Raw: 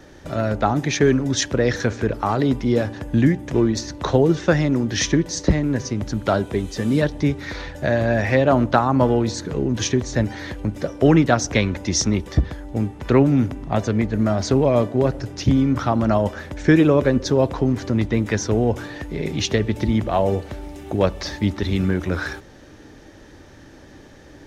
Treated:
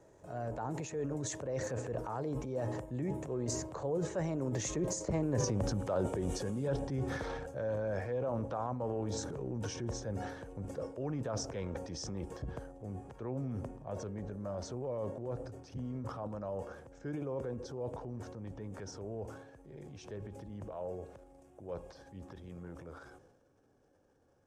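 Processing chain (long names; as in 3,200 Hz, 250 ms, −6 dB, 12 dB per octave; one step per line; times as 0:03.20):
source passing by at 0:05.43, 25 m/s, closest 4.6 metres
parametric band 790 Hz +2 dB
transient designer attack −4 dB, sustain +9 dB
octave-band graphic EQ 125/500/1,000/4,000/8,000 Hz +8/+11/+5/−7/+11 dB
reversed playback
downward compressor 4 to 1, threshold −41 dBFS, peak gain reduction 24 dB
reversed playback
notch filter 2,000 Hz, Q 11
level +6.5 dB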